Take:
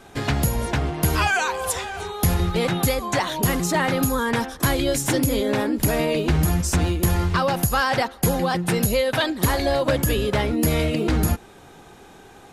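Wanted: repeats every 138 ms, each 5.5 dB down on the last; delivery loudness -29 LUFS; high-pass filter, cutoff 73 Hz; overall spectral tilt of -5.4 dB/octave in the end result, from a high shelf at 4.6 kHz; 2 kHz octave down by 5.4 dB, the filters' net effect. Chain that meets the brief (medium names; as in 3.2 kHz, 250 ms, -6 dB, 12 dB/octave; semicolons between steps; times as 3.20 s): high-pass 73 Hz; peaking EQ 2 kHz -6.5 dB; treble shelf 4.6 kHz -4 dB; feedback delay 138 ms, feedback 53%, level -5.5 dB; trim -7 dB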